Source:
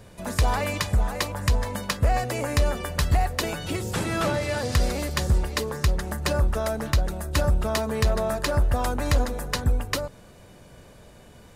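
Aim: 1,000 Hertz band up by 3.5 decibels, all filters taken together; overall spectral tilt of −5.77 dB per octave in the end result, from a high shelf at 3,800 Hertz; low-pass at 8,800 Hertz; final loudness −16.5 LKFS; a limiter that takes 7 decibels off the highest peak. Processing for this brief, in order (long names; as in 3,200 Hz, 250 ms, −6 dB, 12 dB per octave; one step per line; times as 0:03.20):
low-pass filter 8,800 Hz
parametric band 1,000 Hz +5 dB
high-shelf EQ 3,800 Hz −4.5 dB
level +12 dB
brickwall limiter −6 dBFS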